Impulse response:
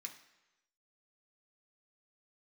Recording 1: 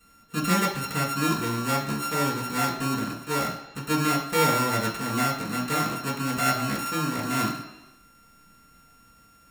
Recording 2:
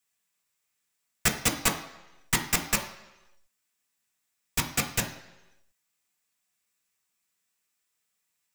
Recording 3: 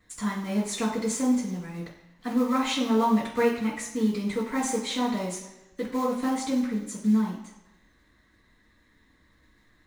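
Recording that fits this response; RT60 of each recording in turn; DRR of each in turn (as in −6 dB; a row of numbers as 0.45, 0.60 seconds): 2; 1.0, 1.0, 1.0 seconds; −8.5, 1.0, −16.5 decibels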